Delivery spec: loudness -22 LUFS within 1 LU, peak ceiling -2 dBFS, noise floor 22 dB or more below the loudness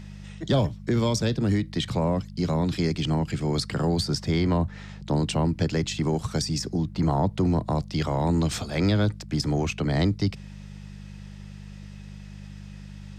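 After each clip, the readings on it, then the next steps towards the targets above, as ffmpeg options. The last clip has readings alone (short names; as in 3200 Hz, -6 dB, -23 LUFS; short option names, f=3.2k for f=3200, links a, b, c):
hum 50 Hz; harmonics up to 200 Hz; hum level -39 dBFS; loudness -25.5 LUFS; peak -12.0 dBFS; loudness target -22.0 LUFS
-> -af "bandreject=f=50:t=h:w=4,bandreject=f=100:t=h:w=4,bandreject=f=150:t=h:w=4,bandreject=f=200:t=h:w=4"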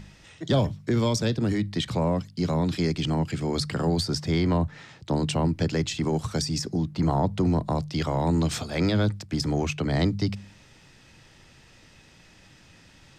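hum none; loudness -26.0 LUFS; peak -11.5 dBFS; loudness target -22.0 LUFS
-> -af "volume=4dB"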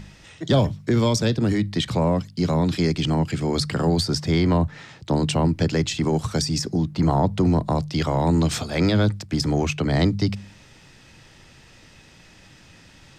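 loudness -22.0 LUFS; peak -7.5 dBFS; noise floor -50 dBFS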